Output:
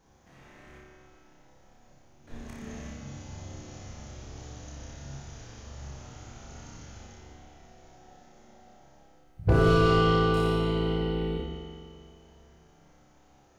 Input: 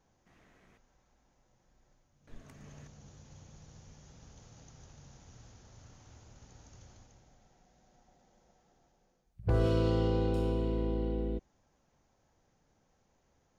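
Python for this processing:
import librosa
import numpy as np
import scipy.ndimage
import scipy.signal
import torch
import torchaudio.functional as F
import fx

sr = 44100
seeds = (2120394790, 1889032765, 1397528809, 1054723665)

y = fx.room_flutter(x, sr, wall_m=5.1, rt60_s=0.71)
y = fx.rev_spring(y, sr, rt60_s=2.4, pass_ms=(43,), chirp_ms=70, drr_db=-0.5)
y = y * 10.0 ** (6.5 / 20.0)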